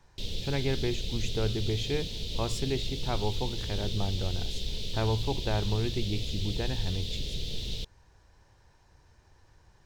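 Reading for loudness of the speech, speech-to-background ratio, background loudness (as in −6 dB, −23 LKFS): −33.5 LKFS, 2.5 dB, −36.0 LKFS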